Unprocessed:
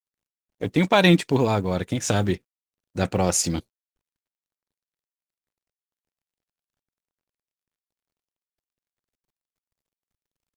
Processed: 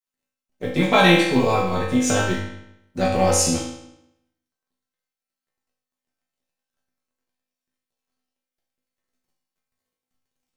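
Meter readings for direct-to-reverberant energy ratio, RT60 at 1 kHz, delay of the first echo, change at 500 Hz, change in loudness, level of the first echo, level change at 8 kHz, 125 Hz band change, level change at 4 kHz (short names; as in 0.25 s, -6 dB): -6.5 dB, 0.80 s, none, +3.0 dB, +2.5 dB, none, +3.5 dB, -1.0 dB, +3.5 dB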